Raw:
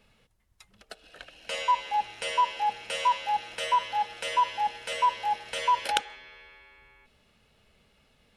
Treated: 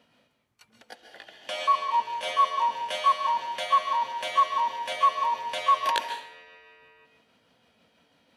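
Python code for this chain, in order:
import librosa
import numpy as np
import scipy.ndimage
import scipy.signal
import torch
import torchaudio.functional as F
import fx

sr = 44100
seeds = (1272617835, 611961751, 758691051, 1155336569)

y = fx.pitch_heads(x, sr, semitones=2.0)
y = scipy.signal.sosfilt(scipy.signal.butter(2, 180.0, 'highpass', fs=sr, output='sos'), y)
y = fx.high_shelf(y, sr, hz=4100.0, db=-9.0)
y = fx.rev_plate(y, sr, seeds[0], rt60_s=0.54, hf_ratio=0.95, predelay_ms=120, drr_db=7.5)
y = F.gain(torch.from_numpy(y), 3.5).numpy()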